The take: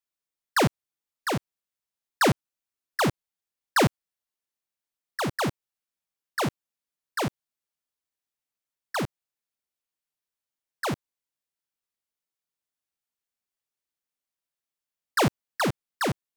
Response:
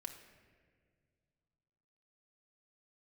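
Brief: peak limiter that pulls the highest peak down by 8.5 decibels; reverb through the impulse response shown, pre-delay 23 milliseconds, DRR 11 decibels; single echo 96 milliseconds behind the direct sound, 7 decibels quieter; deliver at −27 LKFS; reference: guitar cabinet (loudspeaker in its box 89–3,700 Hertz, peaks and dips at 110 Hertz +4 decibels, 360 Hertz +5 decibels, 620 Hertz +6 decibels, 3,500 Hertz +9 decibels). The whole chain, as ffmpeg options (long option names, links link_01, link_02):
-filter_complex "[0:a]alimiter=level_in=2.5dB:limit=-24dB:level=0:latency=1,volume=-2.5dB,aecho=1:1:96:0.447,asplit=2[link_01][link_02];[1:a]atrim=start_sample=2205,adelay=23[link_03];[link_02][link_03]afir=irnorm=-1:irlink=0,volume=-7.5dB[link_04];[link_01][link_04]amix=inputs=2:normalize=0,highpass=89,equalizer=frequency=110:width_type=q:width=4:gain=4,equalizer=frequency=360:width_type=q:width=4:gain=5,equalizer=frequency=620:width_type=q:width=4:gain=6,equalizer=frequency=3500:width_type=q:width=4:gain=9,lowpass=frequency=3700:width=0.5412,lowpass=frequency=3700:width=1.3066,volume=4dB"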